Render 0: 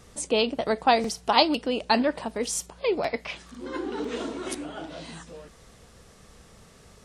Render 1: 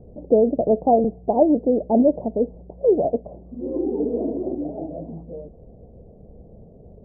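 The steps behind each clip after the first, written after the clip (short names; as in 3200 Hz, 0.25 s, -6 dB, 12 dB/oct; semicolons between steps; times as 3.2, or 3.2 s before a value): steep low-pass 690 Hz 48 dB/oct; gain +8.5 dB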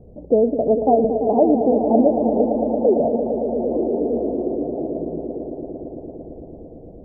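swelling echo 0.113 s, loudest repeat 5, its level -11 dB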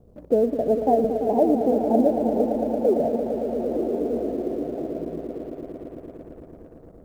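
G.711 law mismatch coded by A; gain -3.5 dB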